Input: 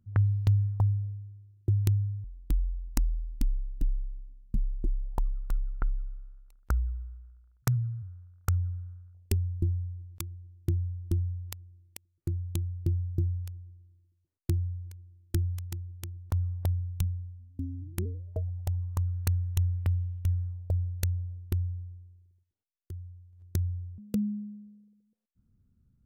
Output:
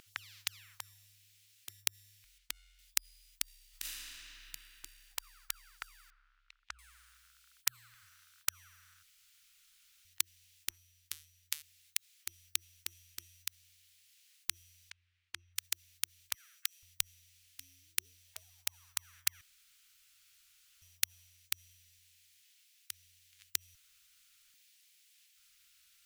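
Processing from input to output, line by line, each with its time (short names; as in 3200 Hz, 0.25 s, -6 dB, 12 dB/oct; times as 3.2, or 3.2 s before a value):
2.38–2.79 LPF 2900 Hz 6 dB/oct
3.7–4.14 reverb throw, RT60 2.7 s, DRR -10 dB
6.1–6.79 tape spacing loss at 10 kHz 42 dB
7.9–8.5 doubler 39 ms -7 dB
9.03–10.05 room tone
10.7–11.62 resonator 76 Hz, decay 0.23 s, harmonics odd
14.9–15.56 LPF 1600 Hz
16.34–16.83 steep high-pass 1300 Hz 72 dB/oct
19.41–20.82 room tone
23.75–24.54 room tone
whole clip: inverse Chebyshev high-pass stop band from 530 Hz, stop band 70 dB; tilt -2.5 dB/oct; spectral compressor 2:1; gain +16 dB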